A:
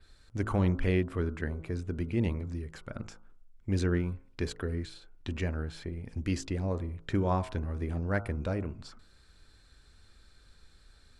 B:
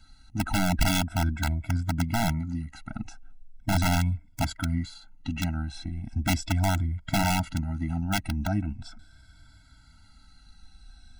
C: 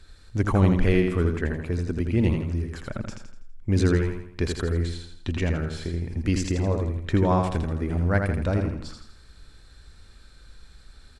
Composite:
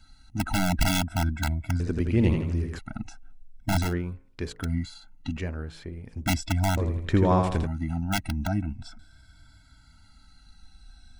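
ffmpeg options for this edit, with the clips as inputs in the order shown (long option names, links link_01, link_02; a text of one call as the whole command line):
ffmpeg -i take0.wav -i take1.wav -i take2.wav -filter_complex "[2:a]asplit=2[link_01][link_02];[0:a]asplit=2[link_03][link_04];[1:a]asplit=5[link_05][link_06][link_07][link_08][link_09];[link_05]atrim=end=1.802[link_10];[link_01]atrim=start=1.798:end=2.792[link_11];[link_06]atrim=start=2.788:end=3.94[link_12];[link_03]atrim=start=3.78:end=4.71[link_13];[link_07]atrim=start=4.55:end=5.372[link_14];[link_04]atrim=start=5.368:end=6.262[link_15];[link_08]atrim=start=6.258:end=6.772[link_16];[link_02]atrim=start=6.768:end=7.672[link_17];[link_09]atrim=start=7.668[link_18];[link_10][link_11]acrossfade=duration=0.004:curve1=hsin:curve2=hsin[link_19];[link_19][link_12]acrossfade=duration=0.004:curve1=hsin:curve2=hsin[link_20];[link_20][link_13]acrossfade=duration=0.16:curve1=tri:curve2=tri[link_21];[link_21][link_14]acrossfade=duration=0.16:curve1=tri:curve2=tri[link_22];[link_22][link_15]acrossfade=duration=0.004:curve1=hsin:curve2=hsin[link_23];[link_23][link_16]acrossfade=duration=0.004:curve1=hsin:curve2=hsin[link_24];[link_24][link_17]acrossfade=duration=0.004:curve1=hsin:curve2=hsin[link_25];[link_25][link_18]acrossfade=duration=0.004:curve1=hsin:curve2=hsin" out.wav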